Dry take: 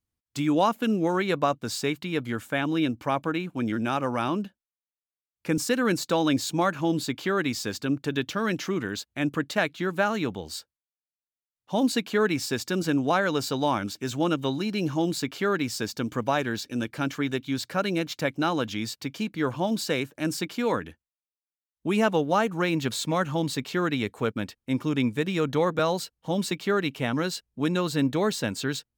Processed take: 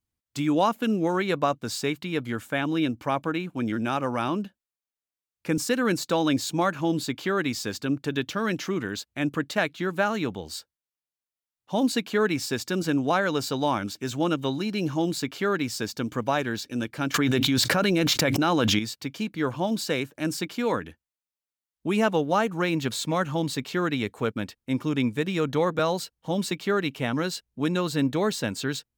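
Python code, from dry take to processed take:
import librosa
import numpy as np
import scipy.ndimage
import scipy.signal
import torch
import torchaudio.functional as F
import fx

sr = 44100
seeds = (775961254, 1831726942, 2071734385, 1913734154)

y = fx.env_flatten(x, sr, amount_pct=100, at=(17.14, 18.79))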